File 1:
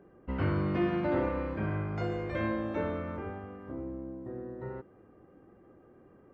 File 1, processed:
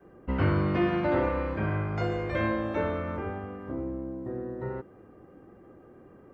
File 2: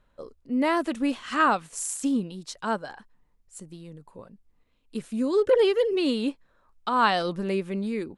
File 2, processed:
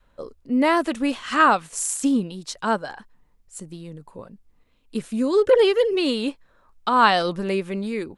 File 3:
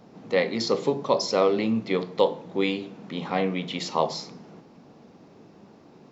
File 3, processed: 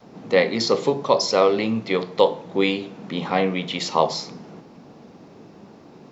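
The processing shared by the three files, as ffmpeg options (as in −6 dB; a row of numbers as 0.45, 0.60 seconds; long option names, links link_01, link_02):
-af "adynamicequalizer=threshold=0.0112:dfrequency=230:dqfactor=0.79:tfrequency=230:tqfactor=0.79:attack=5:release=100:ratio=0.375:range=2.5:mode=cutabove:tftype=bell,volume=5.5dB"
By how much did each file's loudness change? +4.0, +4.5, +4.5 LU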